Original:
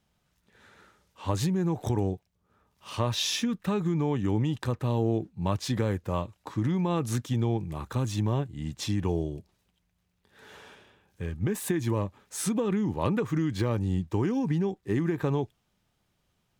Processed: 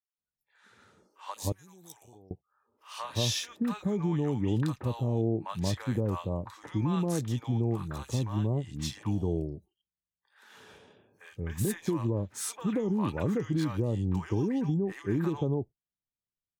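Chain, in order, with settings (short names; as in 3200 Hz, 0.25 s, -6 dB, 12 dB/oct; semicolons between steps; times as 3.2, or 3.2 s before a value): 1.34–2.13 pre-emphasis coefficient 0.97; spectral noise reduction 27 dB; three bands offset in time mids, highs, lows 30/180 ms, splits 790/2400 Hz; gain -1.5 dB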